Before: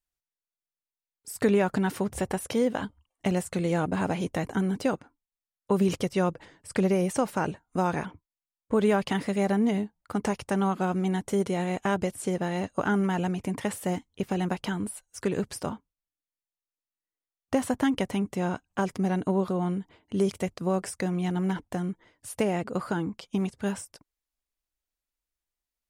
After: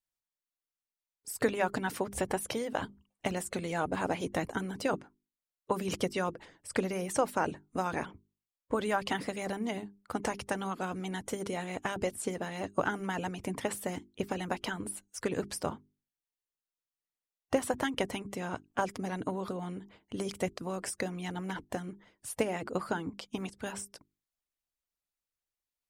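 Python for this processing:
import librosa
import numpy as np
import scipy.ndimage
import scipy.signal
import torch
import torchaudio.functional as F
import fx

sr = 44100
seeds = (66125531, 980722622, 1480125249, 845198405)

y = fx.hum_notches(x, sr, base_hz=50, count=8)
y = fx.hpss(y, sr, part='harmonic', gain_db=-11)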